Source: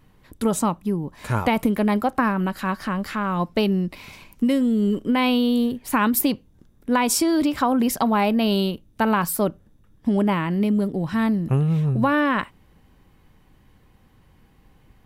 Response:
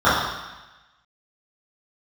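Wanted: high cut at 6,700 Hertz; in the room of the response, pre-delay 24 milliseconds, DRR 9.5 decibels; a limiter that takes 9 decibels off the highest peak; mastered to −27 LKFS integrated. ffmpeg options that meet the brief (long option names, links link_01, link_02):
-filter_complex "[0:a]lowpass=6700,alimiter=limit=-16dB:level=0:latency=1,asplit=2[link_01][link_02];[1:a]atrim=start_sample=2205,adelay=24[link_03];[link_02][link_03]afir=irnorm=-1:irlink=0,volume=-35.5dB[link_04];[link_01][link_04]amix=inputs=2:normalize=0,volume=-2.5dB"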